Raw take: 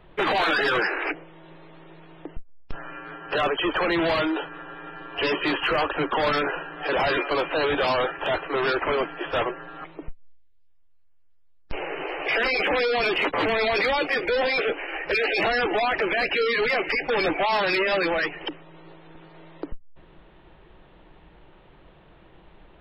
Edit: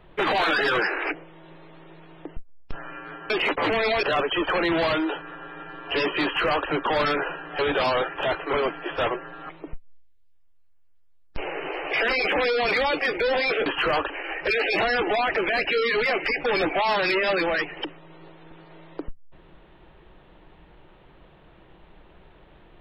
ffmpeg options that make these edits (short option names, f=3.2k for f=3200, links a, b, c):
-filter_complex "[0:a]asplit=8[a][b][c][d][e][f][g][h];[a]atrim=end=3.302[i];[b]atrim=start=13.058:end=13.792[j];[c]atrim=start=3.298:end=6.862[k];[d]atrim=start=7.618:end=8.562[l];[e]atrim=start=8.878:end=13.062[m];[f]atrim=start=13.788:end=14.742[n];[g]atrim=start=5.508:end=5.952[o];[h]atrim=start=14.738[p];[i][j]acrossfade=d=0.004:c1=hsin:c2=hsin[q];[q][k]acrossfade=d=0.004:c1=hsin:c2=hsin[r];[r][l]acrossfade=d=0.004:c1=hsin:c2=hsin[s];[s][m]acrossfade=d=0.004:c1=hsin:c2=hsin[t];[t][n]acrossfade=d=0.004:c1=hsin:c2=hsin[u];[u][o]acrossfade=d=0.004:c1=hsin:c2=hsin[v];[v][p]acrossfade=d=0.004:c1=hsin:c2=hsin"